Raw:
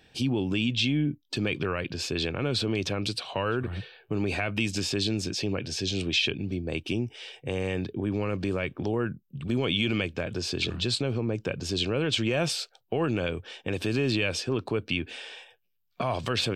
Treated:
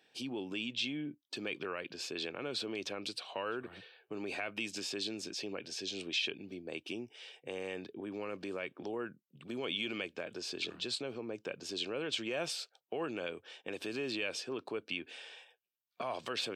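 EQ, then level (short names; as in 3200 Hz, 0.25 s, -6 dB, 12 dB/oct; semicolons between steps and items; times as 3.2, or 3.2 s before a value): HPF 310 Hz 12 dB/oct; -8.5 dB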